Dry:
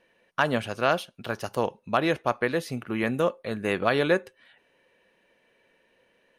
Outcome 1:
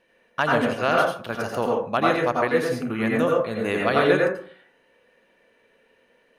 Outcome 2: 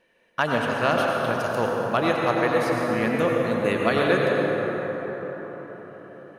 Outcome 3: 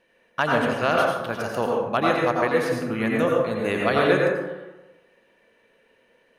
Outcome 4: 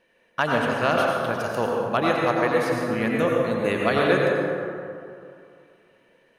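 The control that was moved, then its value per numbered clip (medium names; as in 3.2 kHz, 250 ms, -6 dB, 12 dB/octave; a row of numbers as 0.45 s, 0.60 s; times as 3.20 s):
plate-style reverb, RT60: 0.5 s, 5.3 s, 1.1 s, 2.5 s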